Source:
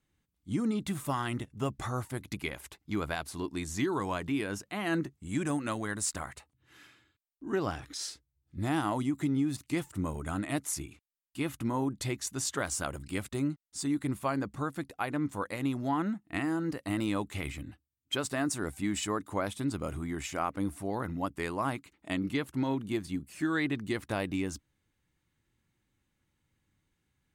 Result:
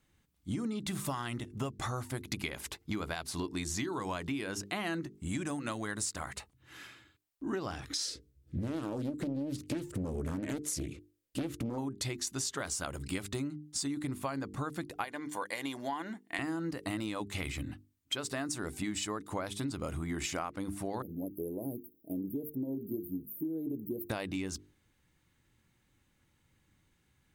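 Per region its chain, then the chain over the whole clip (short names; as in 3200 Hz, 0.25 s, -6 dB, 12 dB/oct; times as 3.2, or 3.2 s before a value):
8.05–11.78 resonant low shelf 620 Hz +7 dB, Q 3 + compressor 2.5:1, threshold -28 dBFS + Doppler distortion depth 0.52 ms
15.04–16.39 HPF 900 Hz 6 dB/oct + notch comb 1300 Hz
21.02–24.1 inverse Chebyshev band-stop 1100–7900 Hz, stop band 50 dB + RIAA curve recording
whole clip: notches 50/100/150/200/250/300/350/400/450 Hz; dynamic EQ 4800 Hz, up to +5 dB, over -54 dBFS, Q 1.1; compressor 10:1, threshold -39 dBFS; gain +6.5 dB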